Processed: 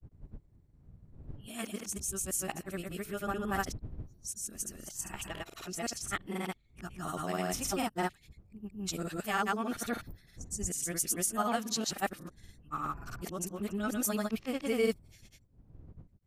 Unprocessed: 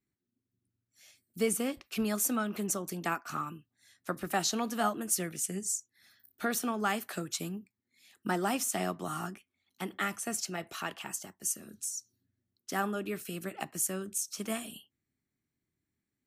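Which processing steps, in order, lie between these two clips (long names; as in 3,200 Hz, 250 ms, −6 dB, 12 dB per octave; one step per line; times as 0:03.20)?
played backwards from end to start
wind on the microphone 110 Hz −49 dBFS
granular cloud, spray 153 ms, pitch spread up and down by 0 semitones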